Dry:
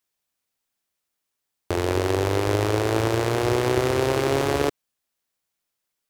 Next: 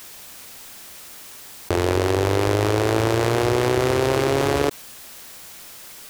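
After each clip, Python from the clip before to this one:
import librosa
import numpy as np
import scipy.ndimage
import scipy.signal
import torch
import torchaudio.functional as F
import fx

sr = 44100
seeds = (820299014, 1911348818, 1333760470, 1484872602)

y = fx.env_flatten(x, sr, amount_pct=70)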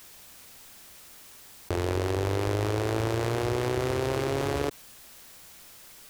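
y = fx.low_shelf(x, sr, hz=120.0, db=6.0)
y = y * 10.0 ** (-9.0 / 20.0)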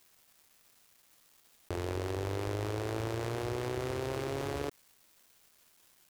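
y = np.where(np.abs(x) >= 10.0 ** (-43.0 / 20.0), x, 0.0)
y = y * 10.0 ** (-7.5 / 20.0)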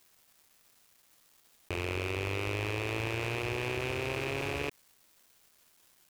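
y = fx.rattle_buzz(x, sr, strikes_db=-44.0, level_db=-25.0)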